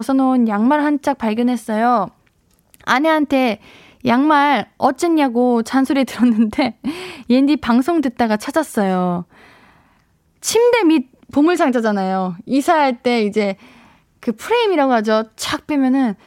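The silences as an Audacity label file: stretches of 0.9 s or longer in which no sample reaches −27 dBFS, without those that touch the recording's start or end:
9.220000	10.420000	silence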